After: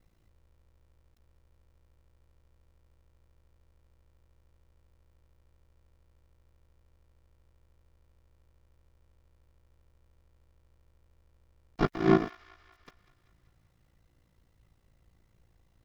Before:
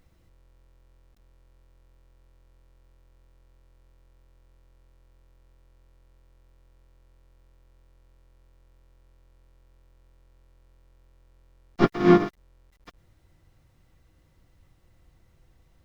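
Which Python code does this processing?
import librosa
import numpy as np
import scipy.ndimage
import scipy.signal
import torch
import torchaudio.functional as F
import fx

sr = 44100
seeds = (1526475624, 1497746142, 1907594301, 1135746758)

p1 = x * np.sin(2.0 * np.pi * 28.0 * np.arange(len(x)) / sr)
p2 = p1 + fx.echo_wet_highpass(p1, sr, ms=193, feedback_pct=58, hz=1500.0, wet_db=-16, dry=0)
y = F.gain(torch.from_numpy(p2), -3.0).numpy()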